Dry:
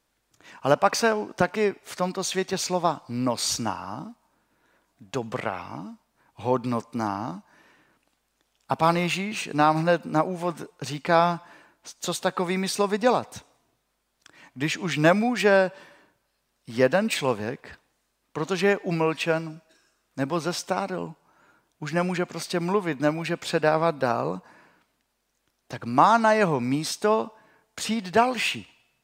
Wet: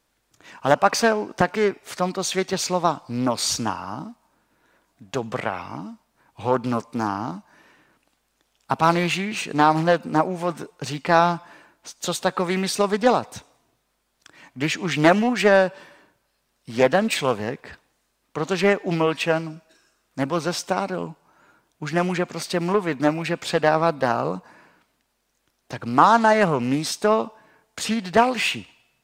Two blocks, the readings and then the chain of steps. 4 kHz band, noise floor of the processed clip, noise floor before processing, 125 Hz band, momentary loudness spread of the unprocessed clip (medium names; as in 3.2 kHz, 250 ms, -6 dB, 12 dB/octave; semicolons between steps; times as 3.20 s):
+3.0 dB, -71 dBFS, -74 dBFS, +2.0 dB, 15 LU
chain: loudspeaker Doppler distortion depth 0.46 ms; trim +3 dB